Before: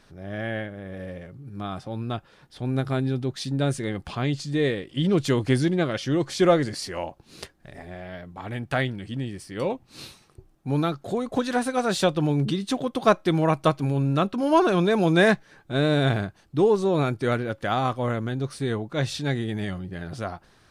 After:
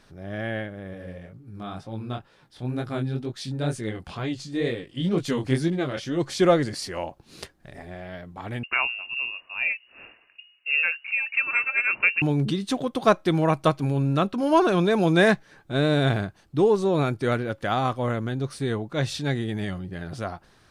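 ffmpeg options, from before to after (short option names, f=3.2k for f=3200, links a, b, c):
-filter_complex "[0:a]asplit=3[a][b][c];[a]afade=t=out:st=0.93:d=0.02[d];[b]flanger=delay=17:depth=7.2:speed=2.1,afade=t=in:st=0.93:d=0.02,afade=t=out:st=6.18:d=0.02[e];[c]afade=t=in:st=6.18:d=0.02[f];[d][e][f]amix=inputs=3:normalize=0,asettb=1/sr,asplit=3[g][h][i];[g]atrim=end=8.634[j];[h]atrim=start=8.63:end=12.22,asetpts=PTS-STARTPTS,afade=t=in:d=0.004:c=qsin,afade=t=out:st=3.586:d=0.004:c=qsin,lowpass=f=2.5k:t=q:w=0.5098,lowpass=f=2.5k:t=q:w=0.6013,lowpass=f=2.5k:t=q:w=0.9,lowpass=f=2.5k:t=q:w=2.563,afreqshift=-2900[k];[i]atrim=start=12.216[l];[j][k]acrossfade=d=0.004:c1=hsin:c2=qsin[m];[m][l]acrossfade=d=0.004:c1=qsin:c2=hsin"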